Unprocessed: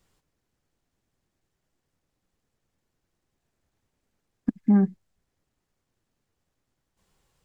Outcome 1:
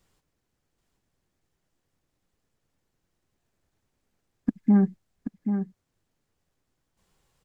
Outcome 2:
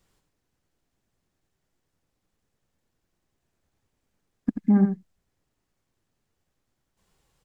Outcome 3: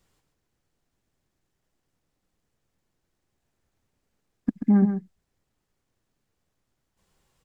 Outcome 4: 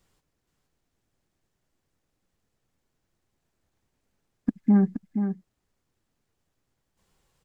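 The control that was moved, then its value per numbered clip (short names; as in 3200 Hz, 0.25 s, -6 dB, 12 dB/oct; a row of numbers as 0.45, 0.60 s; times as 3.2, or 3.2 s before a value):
echo, time: 781, 86, 135, 473 ms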